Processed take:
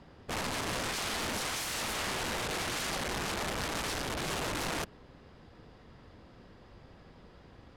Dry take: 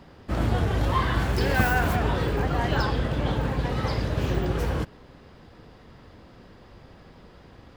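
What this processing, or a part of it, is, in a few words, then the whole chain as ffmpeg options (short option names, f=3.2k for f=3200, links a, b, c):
overflowing digital effects unit: -af "aeval=exprs='(mod(15.8*val(0)+1,2)-1)/15.8':c=same,lowpass=11k,volume=-5.5dB"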